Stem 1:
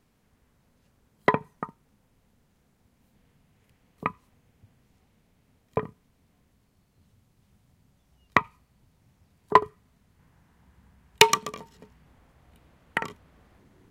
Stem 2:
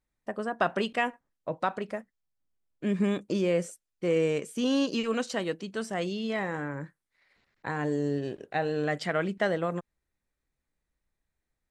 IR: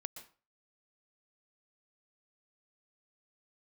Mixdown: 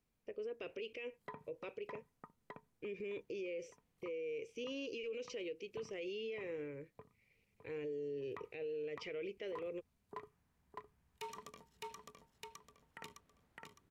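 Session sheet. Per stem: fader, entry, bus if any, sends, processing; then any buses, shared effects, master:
−18.0 dB, 0.00 s, no send, echo send −4.5 dB, high-shelf EQ 4,800 Hz +5 dB
−6.0 dB, 0.00 s, no send, no echo send, drawn EQ curve 110 Hz 0 dB, 180 Hz −20 dB, 470 Hz +6 dB, 710 Hz −21 dB, 1,700 Hz −17 dB, 2,400 Hz +7 dB, 4,000 Hz −12 dB, 5,700 Hz −3 dB, 8,600 Hz −27 dB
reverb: not used
echo: repeating echo 610 ms, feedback 39%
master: brickwall limiter −36.5 dBFS, peak gain reduction 20.5 dB

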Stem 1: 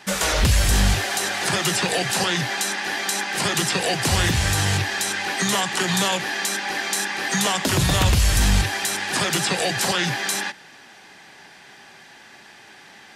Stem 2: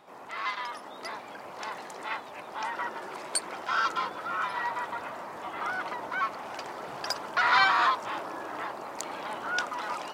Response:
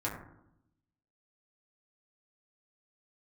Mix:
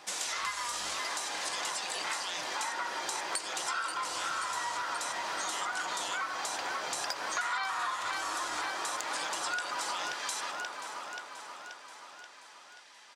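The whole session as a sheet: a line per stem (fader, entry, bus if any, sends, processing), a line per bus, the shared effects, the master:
−18.0 dB, 0.00 s, no send, echo send −17.5 dB, meter weighting curve ITU-R 468
+1.5 dB, 0.00 s, send −7 dB, echo send −5 dB, low-shelf EQ 330 Hz −11.5 dB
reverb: on, RT60 0.80 s, pre-delay 5 ms
echo: repeating echo 531 ms, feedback 59%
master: downward compressor 6 to 1, threshold −32 dBFS, peak gain reduction 17.5 dB

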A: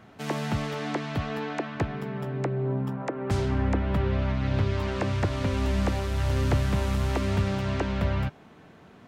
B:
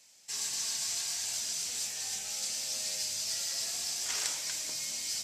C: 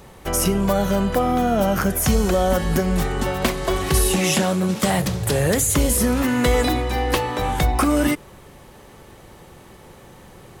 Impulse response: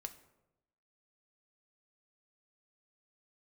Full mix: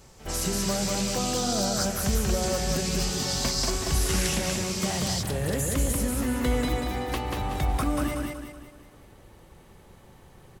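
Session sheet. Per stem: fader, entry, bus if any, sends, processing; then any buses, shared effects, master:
−14.5 dB, 0.00 s, no send, no echo send, no processing
+0.5 dB, 0.00 s, no send, no echo send, auto-filter high-pass saw up 0.54 Hz 880–4,800 Hz
−11.5 dB, 0.00 s, no send, echo send −3 dB, low-shelf EQ 100 Hz +7 dB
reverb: not used
echo: repeating echo 187 ms, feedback 43%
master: no processing

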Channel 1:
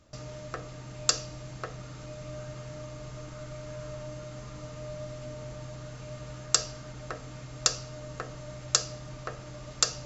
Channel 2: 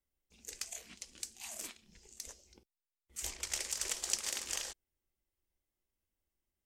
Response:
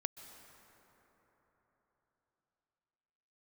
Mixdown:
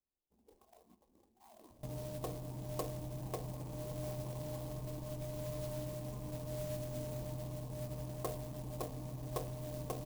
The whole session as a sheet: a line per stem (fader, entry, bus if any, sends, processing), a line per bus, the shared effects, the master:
+1.0 dB, 1.70 s, no send, no processing
−0.5 dB, 0.00 s, no send, spectral tilt +2 dB per octave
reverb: not used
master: Chebyshev low-pass with heavy ripple 1,100 Hz, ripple 3 dB; converter with an unsteady clock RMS 0.089 ms

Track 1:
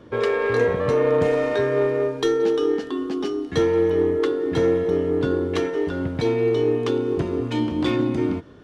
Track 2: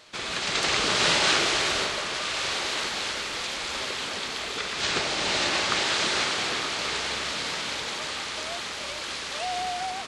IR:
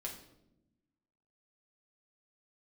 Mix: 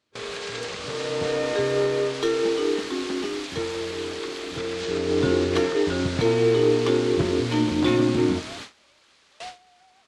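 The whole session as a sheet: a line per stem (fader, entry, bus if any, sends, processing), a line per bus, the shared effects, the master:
0:00.82 −16.5 dB → 0:01.45 −4 dB → 0:03.19 −4 dB → 0:03.76 −13 dB → 0:04.71 −13 dB → 0:05.20 −0.5 dB, 0.00 s, send −12 dB, no processing
−5.0 dB, 0.00 s, send −13 dB, downward compressor 12 to 1, threshold −28 dBFS, peak gain reduction 10.5 dB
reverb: on, RT60 0.85 s, pre-delay 5 ms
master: noise gate with hold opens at −26 dBFS

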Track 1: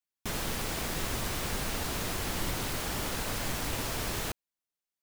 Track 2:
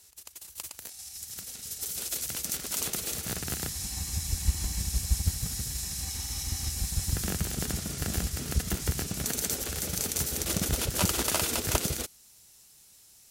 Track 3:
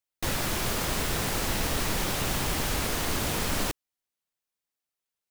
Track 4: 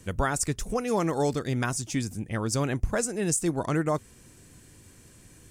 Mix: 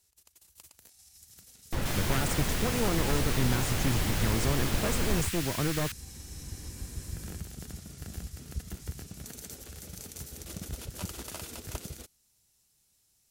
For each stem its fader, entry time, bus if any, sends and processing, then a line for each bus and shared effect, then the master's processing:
0.0 dB, 1.60 s, no send, high-pass filter 1,500 Hz 24 dB per octave
−14.0 dB, 0.00 s, no send, no processing
−4.5 dB, 1.50 s, no send, high-shelf EQ 3,600 Hz −9.5 dB
−5.5 dB, 1.90 s, no send, wavefolder on the positive side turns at −26 dBFS; multiband upward and downward compressor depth 40%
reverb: not used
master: low-shelf EQ 240 Hz +6.5 dB

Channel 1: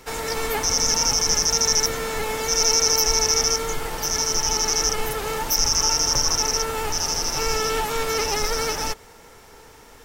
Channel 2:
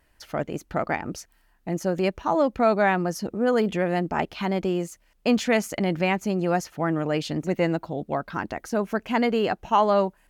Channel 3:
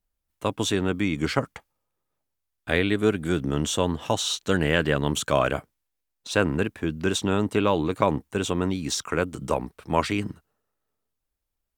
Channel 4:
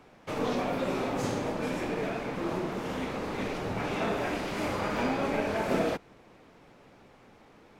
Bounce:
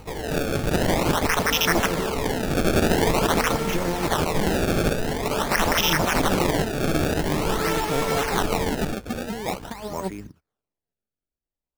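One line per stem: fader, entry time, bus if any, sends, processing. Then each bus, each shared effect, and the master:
−1.5 dB, 0.00 s, no send, upward compression, threshold −41 dBFS
−0.5 dB, 0.00 s, no send, one-sided soft clipper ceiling −15 dBFS; compressor whose output falls as the input rises −27 dBFS, ratio −0.5; mains hum 50 Hz, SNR 16 dB
−10.0 dB, 0.00 s, no send, parametric band 2,900 Hz −13 dB 0.42 octaves
+2.0 dB, 1.10 s, no send, through-zero flanger with one copy inverted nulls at 1.5 Hz, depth 7.2 ms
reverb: not used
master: sample-and-hold swept by an LFO 25×, swing 160% 0.47 Hz

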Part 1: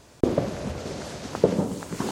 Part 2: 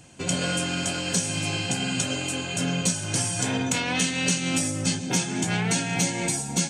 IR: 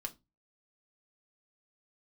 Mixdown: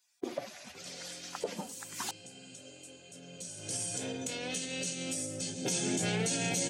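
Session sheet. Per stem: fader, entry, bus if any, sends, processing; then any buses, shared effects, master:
−4.0 dB, 0.00 s, no send, spectral dynamics exaggerated over time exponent 2; high-pass filter 350 Hz 12 dB per octave; high-shelf EQ 2,700 Hz +10 dB
0:03.24 −23.5 dB → 0:03.75 −11 dB → 0:05.47 −11 dB → 0:05.77 −2 dB, 0.55 s, no send, octave-band graphic EQ 500/1,000/2,000 Hz +10/−10/−4 dB; brickwall limiter −16 dBFS, peak gain reduction 6.5 dB; spectral tilt +1.5 dB per octave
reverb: not used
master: brickwall limiter −22.5 dBFS, peak gain reduction 11 dB

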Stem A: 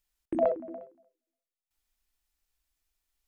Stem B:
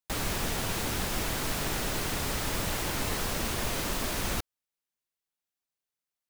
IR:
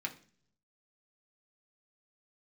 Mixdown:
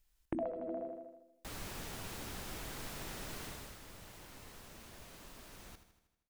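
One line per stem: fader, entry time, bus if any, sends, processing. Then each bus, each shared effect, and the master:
+2.0 dB, 0.00 s, no send, echo send −9.5 dB, low-shelf EQ 180 Hz +10 dB
0:03.45 −14 dB → 0:03.80 −23 dB, 1.35 s, no send, echo send −11 dB, no processing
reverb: not used
echo: repeating echo 79 ms, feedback 58%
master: downward compressor 10 to 1, threshold −35 dBFS, peak gain reduction 17 dB

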